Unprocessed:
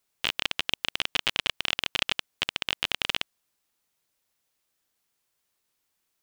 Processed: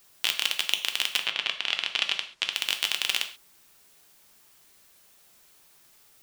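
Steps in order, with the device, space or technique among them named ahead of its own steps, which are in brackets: turntable without a phono preamp (RIAA curve recording; white noise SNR 28 dB); 1.16–2.51 s: low-pass 2.9 kHz -> 5.8 kHz 12 dB/octave; gated-style reverb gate 160 ms falling, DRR 5 dB; trim -3.5 dB

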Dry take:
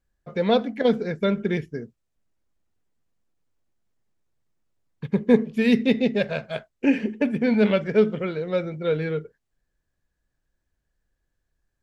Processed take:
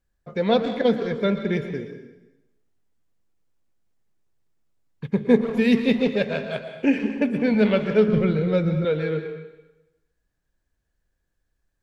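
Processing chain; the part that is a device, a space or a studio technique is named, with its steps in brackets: saturated reverb return (on a send at -6.5 dB: reverberation RT60 0.95 s, pre-delay 108 ms + saturation -17 dBFS, distortion -13 dB); 8.08–8.85 s: on the sum: tone controls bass +13 dB, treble +1 dB

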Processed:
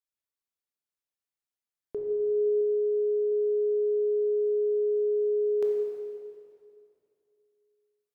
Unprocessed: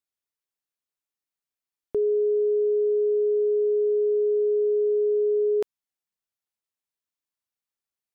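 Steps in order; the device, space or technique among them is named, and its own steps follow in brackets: stairwell (reverberation RT60 2.5 s, pre-delay 14 ms, DRR -0.5 dB); 2.61–3.32 s: distance through air 210 m; trim -7.5 dB

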